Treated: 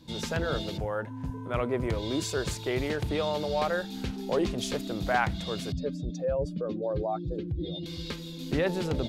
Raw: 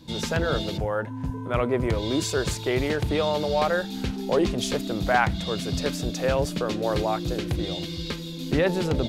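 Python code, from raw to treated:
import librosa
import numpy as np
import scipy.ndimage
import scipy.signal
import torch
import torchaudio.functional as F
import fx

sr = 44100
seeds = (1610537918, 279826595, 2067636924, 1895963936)

y = fx.spec_expand(x, sr, power=1.9, at=(5.72, 7.86))
y = y * librosa.db_to_amplitude(-5.0)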